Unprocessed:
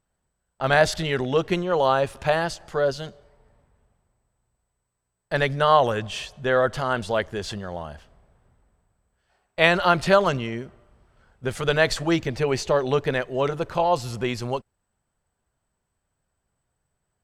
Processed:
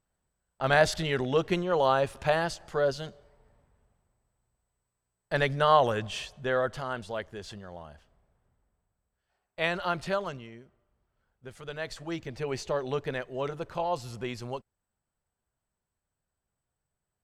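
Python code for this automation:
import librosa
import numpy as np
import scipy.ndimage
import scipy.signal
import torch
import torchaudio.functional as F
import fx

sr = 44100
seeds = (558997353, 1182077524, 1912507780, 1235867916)

y = fx.gain(x, sr, db=fx.line((6.17, -4.0), (7.08, -11.0), (10.01, -11.0), (10.59, -17.5), (11.72, -17.5), (12.54, -9.0)))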